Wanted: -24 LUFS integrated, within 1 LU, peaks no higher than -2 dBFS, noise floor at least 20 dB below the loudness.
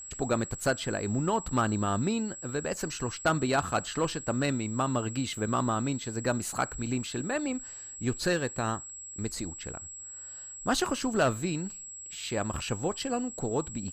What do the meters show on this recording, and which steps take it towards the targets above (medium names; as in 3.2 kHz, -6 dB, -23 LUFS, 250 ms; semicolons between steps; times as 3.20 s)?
steady tone 7.7 kHz; tone level -41 dBFS; loudness -31.0 LUFS; peak level -15.5 dBFS; loudness target -24.0 LUFS
-> band-stop 7.7 kHz, Q 30; trim +7 dB